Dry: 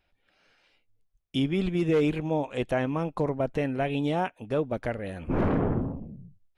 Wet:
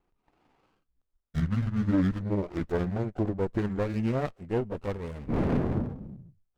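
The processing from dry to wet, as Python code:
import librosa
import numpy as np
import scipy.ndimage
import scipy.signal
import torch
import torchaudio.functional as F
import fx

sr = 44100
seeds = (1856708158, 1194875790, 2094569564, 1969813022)

y = fx.pitch_glide(x, sr, semitones=-11.5, runs='ending unshifted')
y = fx.running_max(y, sr, window=17)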